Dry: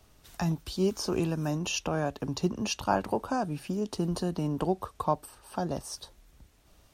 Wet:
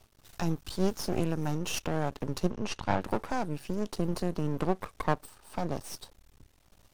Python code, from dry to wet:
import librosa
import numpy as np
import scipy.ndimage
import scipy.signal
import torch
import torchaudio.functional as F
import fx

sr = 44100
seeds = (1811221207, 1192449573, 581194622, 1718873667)

y = np.maximum(x, 0.0)
y = fx.air_absorb(y, sr, metres=80.0, at=(2.5, 3.0), fade=0.02)
y = y * librosa.db_to_amplitude(2.0)